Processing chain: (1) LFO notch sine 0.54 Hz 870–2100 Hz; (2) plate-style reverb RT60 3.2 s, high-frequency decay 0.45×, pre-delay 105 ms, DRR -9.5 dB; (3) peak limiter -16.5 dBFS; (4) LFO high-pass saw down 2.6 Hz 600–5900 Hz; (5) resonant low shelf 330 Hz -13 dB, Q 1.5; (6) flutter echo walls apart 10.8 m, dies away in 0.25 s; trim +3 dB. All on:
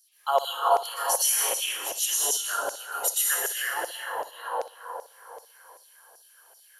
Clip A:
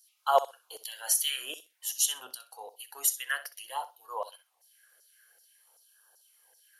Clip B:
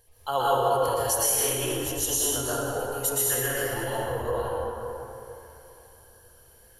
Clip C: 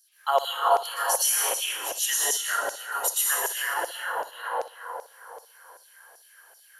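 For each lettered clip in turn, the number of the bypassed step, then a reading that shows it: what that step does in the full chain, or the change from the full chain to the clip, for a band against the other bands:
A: 2, momentary loudness spread change +5 LU; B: 4, 250 Hz band +19.5 dB; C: 1, 2 kHz band +2.5 dB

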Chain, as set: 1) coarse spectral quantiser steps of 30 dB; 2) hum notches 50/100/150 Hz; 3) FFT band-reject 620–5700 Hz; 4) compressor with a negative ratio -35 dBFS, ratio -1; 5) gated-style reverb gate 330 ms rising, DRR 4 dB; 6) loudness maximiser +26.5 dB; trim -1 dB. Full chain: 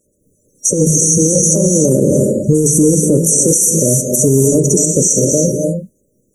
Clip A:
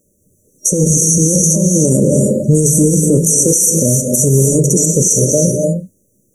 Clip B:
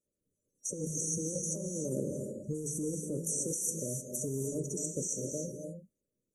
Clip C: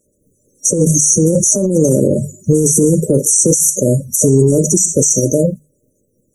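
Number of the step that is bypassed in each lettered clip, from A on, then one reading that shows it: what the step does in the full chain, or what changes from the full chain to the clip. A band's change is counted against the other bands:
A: 1, 125 Hz band +2.5 dB; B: 6, crest factor change +7.0 dB; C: 5, momentary loudness spread change +1 LU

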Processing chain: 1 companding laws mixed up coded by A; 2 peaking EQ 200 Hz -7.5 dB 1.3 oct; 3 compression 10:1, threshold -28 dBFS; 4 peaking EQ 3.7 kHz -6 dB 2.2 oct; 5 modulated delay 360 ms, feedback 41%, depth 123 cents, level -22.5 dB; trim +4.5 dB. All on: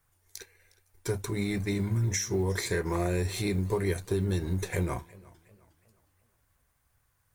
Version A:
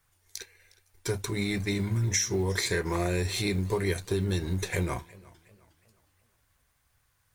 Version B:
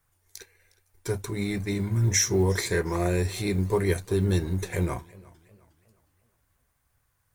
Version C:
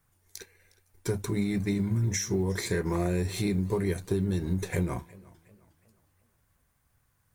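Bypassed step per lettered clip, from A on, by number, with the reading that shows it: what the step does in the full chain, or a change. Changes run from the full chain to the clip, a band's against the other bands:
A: 4, 4 kHz band +5.0 dB; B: 3, mean gain reduction 2.5 dB; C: 2, 250 Hz band +4.0 dB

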